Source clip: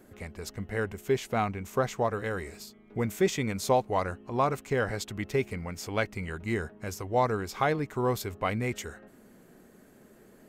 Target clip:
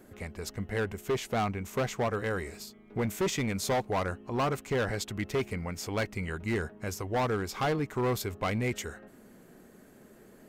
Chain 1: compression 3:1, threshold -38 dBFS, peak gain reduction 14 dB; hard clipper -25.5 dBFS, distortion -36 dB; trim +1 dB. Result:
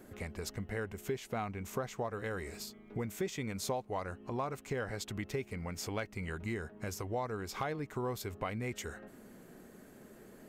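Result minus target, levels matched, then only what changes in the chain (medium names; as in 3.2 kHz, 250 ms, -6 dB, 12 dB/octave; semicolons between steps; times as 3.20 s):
compression: peak gain reduction +14 dB
remove: compression 3:1, threshold -38 dBFS, peak gain reduction 14 dB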